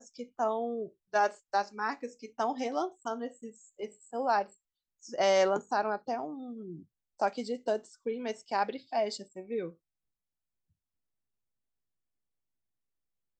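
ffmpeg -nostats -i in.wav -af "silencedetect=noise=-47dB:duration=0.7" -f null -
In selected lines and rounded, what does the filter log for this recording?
silence_start: 9.72
silence_end: 13.40 | silence_duration: 3.68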